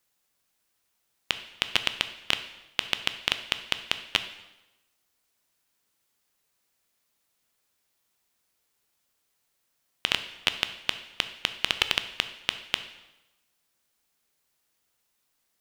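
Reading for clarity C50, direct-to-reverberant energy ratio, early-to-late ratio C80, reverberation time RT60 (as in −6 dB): 12.0 dB, 9.5 dB, 14.0 dB, 1.0 s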